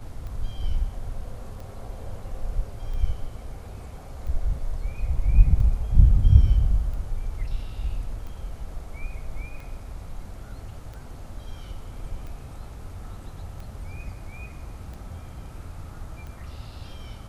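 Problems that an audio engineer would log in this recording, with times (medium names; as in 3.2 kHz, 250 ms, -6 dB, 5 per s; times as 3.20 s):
tick 45 rpm -28 dBFS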